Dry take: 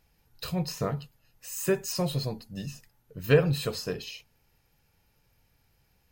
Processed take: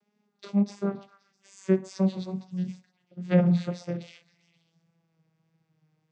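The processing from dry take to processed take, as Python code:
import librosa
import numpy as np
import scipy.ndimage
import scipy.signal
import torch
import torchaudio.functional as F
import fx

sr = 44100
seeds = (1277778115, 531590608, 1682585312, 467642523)

p1 = fx.vocoder_glide(x, sr, note=56, semitones=-5)
p2 = fx.wow_flutter(p1, sr, seeds[0], rate_hz=2.1, depth_cents=23.0)
p3 = p2 + fx.echo_stepped(p2, sr, ms=131, hz=910.0, octaves=0.7, feedback_pct=70, wet_db=-12, dry=0)
y = p3 * librosa.db_to_amplitude(3.0)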